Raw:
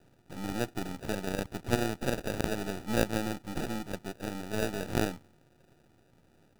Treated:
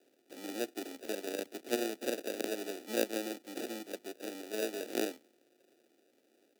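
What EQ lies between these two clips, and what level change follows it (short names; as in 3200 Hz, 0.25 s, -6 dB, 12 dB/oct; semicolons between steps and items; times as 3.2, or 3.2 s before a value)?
steep high-pass 190 Hz 36 dB/oct; bell 15000 Hz +5 dB 0.21 oct; fixed phaser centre 430 Hz, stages 4; -1.0 dB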